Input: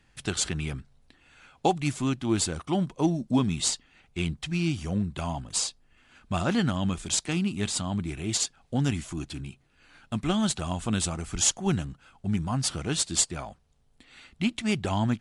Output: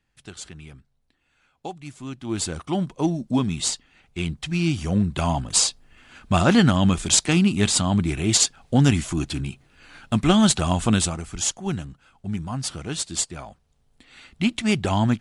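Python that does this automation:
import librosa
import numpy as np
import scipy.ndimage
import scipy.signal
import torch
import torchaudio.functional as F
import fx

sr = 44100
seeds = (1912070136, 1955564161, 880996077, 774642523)

y = fx.gain(x, sr, db=fx.line((1.93, -10.5), (2.51, 2.0), (4.22, 2.0), (5.31, 9.0), (10.88, 9.0), (11.33, -1.0), (13.33, -1.0), (14.58, 5.5)))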